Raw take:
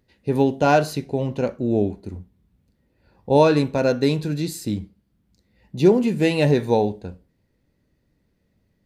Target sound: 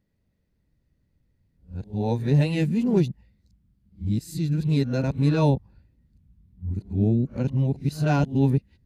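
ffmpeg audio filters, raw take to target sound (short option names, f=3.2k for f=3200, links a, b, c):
-af "areverse,asubboost=boost=7:cutoff=190,volume=-7.5dB"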